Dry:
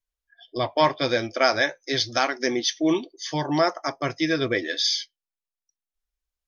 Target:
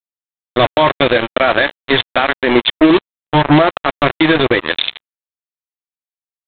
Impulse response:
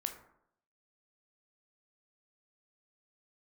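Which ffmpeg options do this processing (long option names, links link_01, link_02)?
-af "aresample=8000,acrusher=bits=3:mix=0:aa=0.5,aresample=44100,alimiter=level_in=16dB:limit=-1dB:release=50:level=0:latency=1,volume=-1dB"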